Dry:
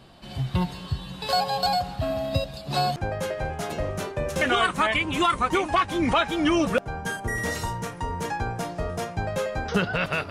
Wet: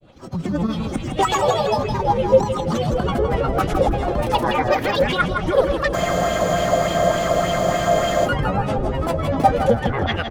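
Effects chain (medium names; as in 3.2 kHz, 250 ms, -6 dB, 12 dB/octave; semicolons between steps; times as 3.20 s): bass shelf 500 Hz +10 dB; compression, threshold -22 dBFS, peak gain reduction 11.5 dB; peak limiter -18.5 dBFS, peak gain reduction 6 dB; level rider gain up to 11 dB; granulator, pitch spread up and down by 12 st; small resonant body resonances 560/790/1200/3300 Hz, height 7 dB, ringing for 25 ms; rotary cabinet horn 8 Hz; feedback delay 163 ms, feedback 30%, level -6.5 dB; spectral freeze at 5.96 s, 2.29 s; sweeping bell 3.4 Hz 490–3100 Hz +7 dB; trim -4 dB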